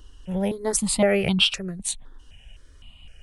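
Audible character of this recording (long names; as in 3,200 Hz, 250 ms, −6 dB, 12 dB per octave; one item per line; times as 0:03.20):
notches that jump at a steady rate 3.9 Hz 640–1,900 Hz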